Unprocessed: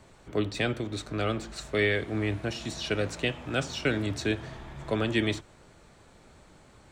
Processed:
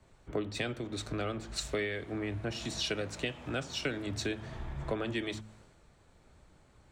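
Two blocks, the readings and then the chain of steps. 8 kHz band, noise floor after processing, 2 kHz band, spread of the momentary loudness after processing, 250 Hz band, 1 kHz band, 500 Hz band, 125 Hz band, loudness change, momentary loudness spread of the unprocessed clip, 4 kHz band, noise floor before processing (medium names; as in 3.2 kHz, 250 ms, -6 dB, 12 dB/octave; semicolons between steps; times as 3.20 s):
-1.0 dB, -63 dBFS, -7.0 dB, 6 LU, -6.5 dB, -5.5 dB, -6.5 dB, -7.0 dB, -6.0 dB, 8 LU, -3.0 dB, -56 dBFS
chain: de-hum 107.9 Hz, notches 2; compression 5:1, threshold -37 dBFS, peak gain reduction 14.5 dB; three bands expanded up and down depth 70%; trim +4 dB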